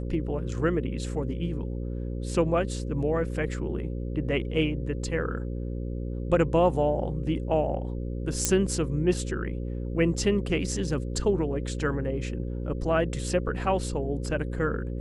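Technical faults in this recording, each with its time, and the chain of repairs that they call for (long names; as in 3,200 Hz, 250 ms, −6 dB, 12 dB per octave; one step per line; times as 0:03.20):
mains buzz 60 Hz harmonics 9 −32 dBFS
0:08.45: click −7 dBFS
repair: click removal
hum removal 60 Hz, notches 9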